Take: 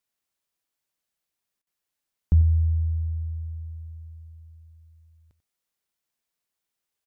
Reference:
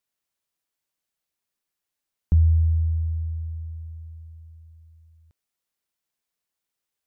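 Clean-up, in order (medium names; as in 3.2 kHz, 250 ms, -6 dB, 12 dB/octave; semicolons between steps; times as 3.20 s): interpolate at 1.62 s, 47 ms; inverse comb 92 ms -14.5 dB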